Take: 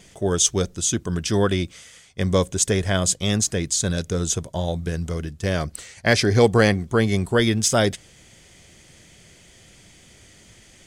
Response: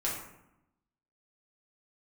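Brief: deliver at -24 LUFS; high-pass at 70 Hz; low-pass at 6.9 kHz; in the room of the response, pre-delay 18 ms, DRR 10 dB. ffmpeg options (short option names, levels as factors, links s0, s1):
-filter_complex "[0:a]highpass=70,lowpass=6900,asplit=2[s0][s1];[1:a]atrim=start_sample=2205,adelay=18[s2];[s1][s2]afir=irnorm=-1:irlink=0,volume=0.168[s3];[s0][s3]amix=inputs=2:normalize=0,volume=0.794"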